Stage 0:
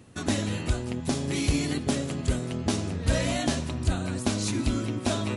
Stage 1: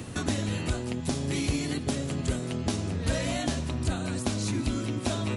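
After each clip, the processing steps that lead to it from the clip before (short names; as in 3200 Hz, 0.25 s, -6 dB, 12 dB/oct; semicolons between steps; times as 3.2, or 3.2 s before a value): three-band squash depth 70%; gain -2.5 dB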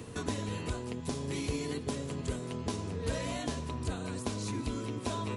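small resonant body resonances 450/1000 Hz, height 14 dB, ringing for 0.1 s; gain -7 dB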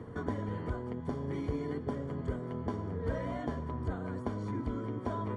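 polynomial smoothing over 41 samples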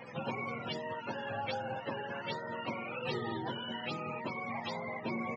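spectrum mirrored in octaves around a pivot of 480 Hz; downsampling 16000 Hz; gain +1.5 dB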